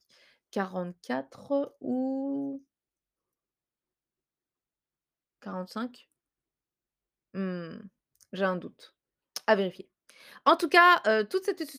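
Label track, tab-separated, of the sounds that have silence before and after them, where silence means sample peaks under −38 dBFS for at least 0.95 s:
5.460000	5.870000	sound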